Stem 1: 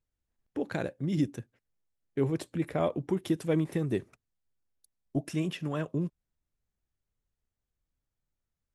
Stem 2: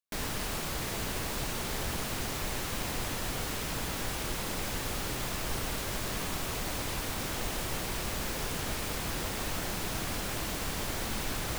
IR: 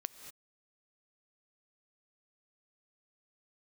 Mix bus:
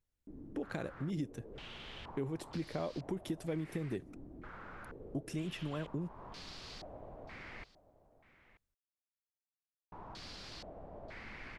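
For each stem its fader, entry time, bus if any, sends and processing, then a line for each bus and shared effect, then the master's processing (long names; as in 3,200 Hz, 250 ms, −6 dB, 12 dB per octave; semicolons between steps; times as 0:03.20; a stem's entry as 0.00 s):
−1.5 dB, 0.00 s, no send, no echo send, no processing
−16.5 dB, 0.15 s, muted 0:07.64–0:09.92, no send, echo send −17 dB, low-pass on a step sequencer 2.1 Hz 300–4,600 Hz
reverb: not used
echo: single-tap delay 933 ms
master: downward compressor 3 to 1, threshold −37 dBFS, peak gain reduction 10.5 dB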